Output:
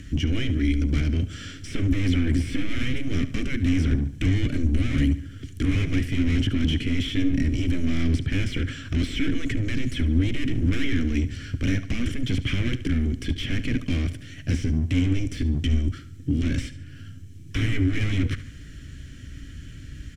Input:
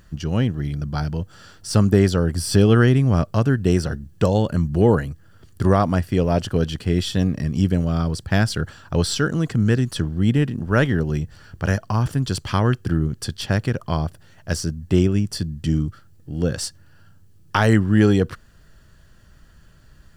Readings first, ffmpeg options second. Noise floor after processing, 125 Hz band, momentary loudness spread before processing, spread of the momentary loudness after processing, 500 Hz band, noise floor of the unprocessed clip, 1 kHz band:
-41 dBFS, -4.5 dB, 11 LU, 15 LU, -15.0 dB, -50 dBFS, -19.0 dB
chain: -filter_complex "[0:a]asplit=2[a][b];[b]highpass=f=720:p=1,volume=34dB,asoftclip=type=tanh:threshold=-3dB[c];[a][c]amix=inputs=2:normalize=0,lowpass=f=3.2k:p=1,volume=-6dB,afftfilt=real='re*lt(hypot(re,im),1.26)':imag='im*lt(hypot(re,im),1.26)':win_size=1024:overlap=0.75,lowshelf=f=130:g=6.5,bandreject=f=4.6k:w=6.6,acrossover=split=140|4600[d][e][f];[d]aeval=exprs='clip(val(0),-1,0.0794)':c=same[g];[e]asplit=3[h][i][j];[h]bandpass=f=270:t=q:w=8,volume=0dB[k];[i]bandpass=f=2.29k:t=q:w=8,volume=-6dB[l];[j]bandpass=f=3.01k:t=q:w=8,volume=-9dB[m];[k][l][m]amix=inputs=3:normalize=0[n];[f]acompressor=threshold=-35dB:ratio=6[o];[g][n][o]amix=inputs=3:normalize=0,aemphasis=mode=reproduction:type=75fm,asplit=2[p][q];[q]aecho=0:1:72|144|216|288:0.188|0.0848|0.0381|0.0172[r];[p][r]amix=inputs=2:normalize=0"

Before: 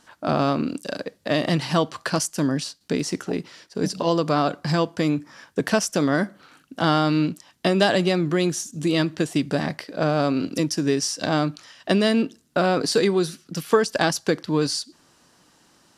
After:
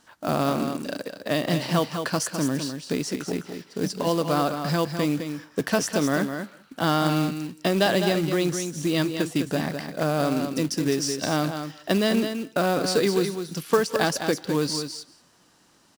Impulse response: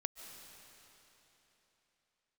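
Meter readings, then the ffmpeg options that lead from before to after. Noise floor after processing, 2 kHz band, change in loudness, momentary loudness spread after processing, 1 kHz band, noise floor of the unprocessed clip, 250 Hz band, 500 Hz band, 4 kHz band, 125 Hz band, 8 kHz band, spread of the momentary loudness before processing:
-59 dBFS, -2.0 dB, -2.0 dB, 8 LU, -2.0 dB, -60 dBFS, -2.0 dB, -2.0 dB, -2.0 dB, -2.0 dB, -1.5 dB, 9 LU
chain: -filter_complex "[0:a]aecho=1:1:207:0.422[a];[1:a]atrim=start_sample=2205,atrim=end_sample=6174,asetrate=31752,aresample=44100[b];[a][b]afir=irnorm=-1:irlink=0,acrusher=bits=4:mode=log:mix=0:aa=0.000001,volume=-2dB"

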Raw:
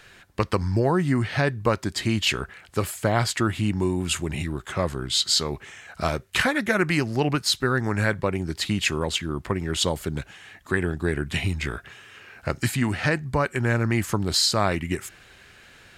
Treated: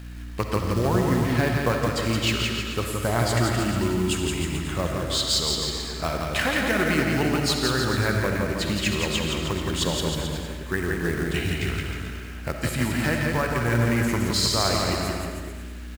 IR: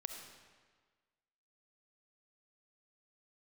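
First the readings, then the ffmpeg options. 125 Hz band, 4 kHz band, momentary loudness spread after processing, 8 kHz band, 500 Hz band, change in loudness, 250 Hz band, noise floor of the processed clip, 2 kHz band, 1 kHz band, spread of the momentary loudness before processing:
+0.5 dB, +0.5 dB, 8 LU, +0.5 dB, +0.5 dB, +0.5 dB, +1.0 dB, -35 dBFS, 0.0 dB, +0.5 dB, 10 LU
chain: -filter_complex "[0:a]aeval=exprs='val(0)+0.02*(sin(2*PI*60*n/s)+sin(2*PI*2*60*n/s)/2+sin(2*PI*3*60*n/s)/3+sin(2*PI*4*60*n/s)/4+sin(2*PI*5*60*n/s)/5)':c=same,acrusher=bits=4:mode=log:mix=0:aa=0.000001,aecho=1:1:170|314.5|437.3|541.7|630.5:0.631|0.398|0.251|0.158|0.1[a];[1:a]atrim=start_sample=2205[b];[a][b]afir=irnorm=-1:irlink=0"

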